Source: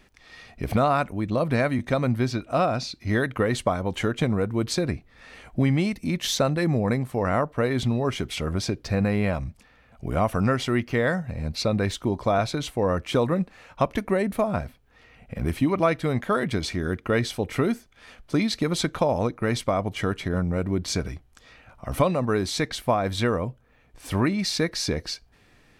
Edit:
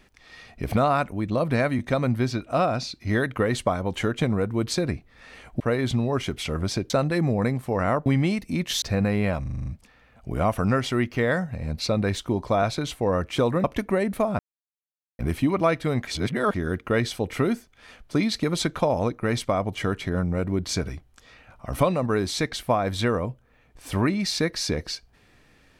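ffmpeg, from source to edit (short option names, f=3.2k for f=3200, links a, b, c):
-filter_complex "[0:a]asplit=16[a][b][c][d][e][f][g][h][i][j][k][l][m][n][o][p];[a]atrim=end=5.602[q];[b]atrim=start=7.518:end=8.822[r];[c]atrim=start=6.358:end=7.522[s];[d]atrim=start=5.598:end=6.362[t];[e]atrim=start=8.818:end=9.462[u];[f]atrim=start=9.418:end=9.462[v];[g]atrim=start=9.418:end=9.462[w];[h]atrim=start=9.418:end=9.462[x];[i]atrim=start=9.418:end=9.462[y];[j]atrim=start=9.418:end=9.462[z];[k]atrim=start=9.418:end=13.402[aa];[l]atrim=start=13.828:end=14.58,asetpts=PTS-STARTPTS,afade=t=out:st=0.748:d=0.004:c=hsin[ab];[m]atrim=start=14.58:end=15.38,asetpts=PTS-STARTPTS,volume=0[ac];[n]atrim=start=15.38:end=16.262,asetpts=PTS-STARTPTS,afade=t=in:d=0.004:c=hsin[ad];[o]atrim=start=16.258:end=16.732,asetpts=PTS-STARTPTS,areverse[ae];[p]atrim=start=16.728[af];[q][r]acrossfade=d=0.004:c1=hsin:c2=hsin[ag];[ag][s]acrossfade=d=0.004:c1=hsin:c2=hsin[ah];[ah][t]acrossfade=d=0.004:c1=hsin:c2=hsin[ai];[ai][u]acrossfade=d=0.004:c1=hsin:c2=hsin[aj];[aj][v]acrossfade=d=0.004:c1=hsin:c2=hsin[ak];[ak][w]acrossfade=d=0.004:c1=hsin:c2=hsin[al];[al][x]acrossfade=d=0.004:c1=hsin:c2=hsin[am];[am][y]acrossfade=d=0.004:c1=hsin:c2=hsin[an];[an][z]acrossfade=d=0.004:c1=hsin:c2=hsin[ao];[ao][aa]acrossfade=d=0.004:c1=hsin:c2=hsin[ap];[ab][ac][ad]concat=n=3:v=0:a=1[aq];[ap][aq]acrossfade=d=0.004:c1=hsin:c2=hsin[ar];[ar][ae]acrossfade=d=0.004:c1=hsin:c2=hsin[as];[as][af]acrossfade=d=0.004:c1=hsin:c2=hsin"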